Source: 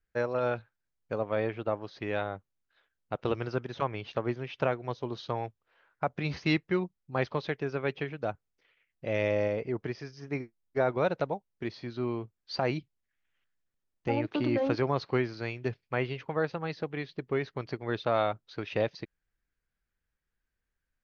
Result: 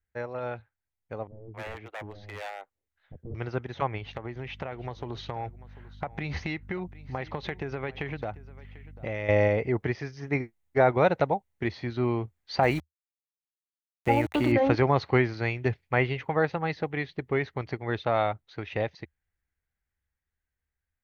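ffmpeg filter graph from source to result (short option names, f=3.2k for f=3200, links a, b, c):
-filter_complex "[0:a]asettb=1/sr,asplit=3[a][b][c];[a]atrim=end=1.274[d];[b]atrim=start=1.27:end=3.35,asetpts=PTS-STARTPTS,afade=t=in:d=0.004:c=qsin,afade=t=out:st=2.076:d=0.004:c=qsin,aeval=exprs='0.0447*(abs(mod(val(0)/0.0447+3,4)-2)-1)':c=same,acrossover=split=400[e][f];[f]adelay=270[g];[e][g]amix=inputs=2:normalize=0,atrim=end_sample=91728[h];[c]atrim=start=3.346[i];[d][h]acrossfade=d=0.004:c1=hsin:c2=qsin[j];[j][i]acrossfade=d=0.004:c1=qsin:c2=hsin,asettb=1/sr,asplit=3[k][l][m];[k]atrim=end=3.974[n];[l]atrim=start=3.97:end=9.29,asetpts=PTS-STARTPTS,afade=t=in:d=0.004:c=qsin,afade=t=out:st=5.316:d=0.004:c=qsin,aeval=exprs='val(0)+0.002*(sin(2*PI*50*n/s)+sin(2*PI*2*50*n/s)/2+sin(2*PI*3*50*n/s)/3+sin(2*PI*4*50*n/s)/4+sin(2*PI*5*50*n/s)/5)':c=same,acompressor=threshold=-34dB:ratio=10:attack=3.2:release=140:knee=1:detection=peak,aecho=1:1:743:0.106,atrim=end_sample=234612[o];[m]atrim=start=9.286[p];[n][o]acrossfade=d=0.004:c1=hsin:c2=qsin[q];[q][p]acrossfade=d=0.004:c1=qsin:c2=hsin,asettb=1/sr,asplit=3[r][s][t];[r]atrim=end=12.634[u];[s]atrim=start=12.63:end=14.52,asetpts=PTS-STARTPTS,afade=t=in:d=0.004:c=qsin,afade=t=out:st=1.886:d=0.004:c=qsin,lowshelf=f=110:g=-6,aeval=exprs='val(0)+0.00178*(sin(2*PI*60*n/s)+sin(2*PI*2*60*n/s)/2+sin(2*PI*3*60*n/s)/3+sin(2*PI*4*60*n/s)/4+sin(2*PI*5*60*n/s)/5)':c=same,aeval=exprs='val(0)*gte(abs(val(0)),0.00668)':c=same[v];[t]atrim=start=14.516[w];[u][v]acrossfade=d=0.004:c1=hsin:c2=qsin[x];[x][w]acrossfade=d=0.004:c1=qsin:c2=hsin,equalizer=f=78:t=o:w=0.7:g=13.5,dynaudnorm=f=920:g=9:m=11.5dB,equalizer=f=800:t=o:w=0.33:g=6,equalizer=f=2k:t=o:w=0.33:g=7,equalizer=f=5k:t=o:w=0.33:g=-6,volume=-6dB"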